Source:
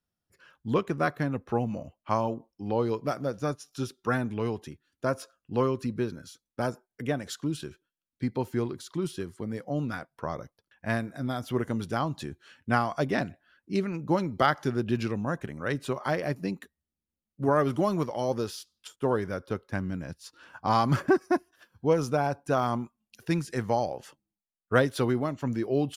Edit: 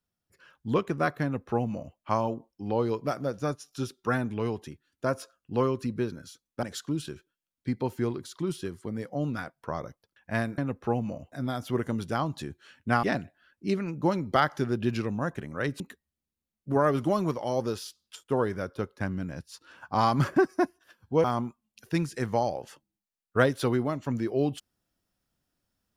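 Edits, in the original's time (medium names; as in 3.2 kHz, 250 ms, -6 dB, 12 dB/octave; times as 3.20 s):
1.23–1.97 s: copy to 11.13 s
6.63–7.18 s: delete
12.84–13.09 s: delete
15.86–16.52 s: delete
21.96–22.60 s: delete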